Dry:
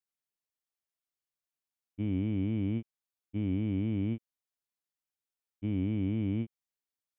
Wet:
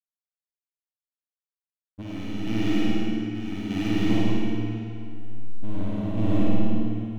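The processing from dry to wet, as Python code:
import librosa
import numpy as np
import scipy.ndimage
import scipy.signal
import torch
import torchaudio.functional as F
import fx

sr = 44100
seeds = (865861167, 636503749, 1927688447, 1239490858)

y = fx.wiener(x, sr, points=41)
y = fx.tilt_eq(y, sr, slope=4.5, at=(2.01, 4.08), fade=0.02)
y = fx.rider(y, sr, range_db=3, speed_s=0.5)
y = fx.leveller(y, sr, passes=3)
y = fx.backlash(y, sr, play_db=-44.5)
y = fx.chopper(y, sr, hz=0.81, depth_pct=65, duty_pct=50)
y = fx.room_flutter(y, sr, wall_m=9.2, rt60_s=0.98)
y = fx.rev_freeverb(y, sr, rt60_s=2.5, hf_ratio=0.9, predelay_ms=20, drr_db=-4.0)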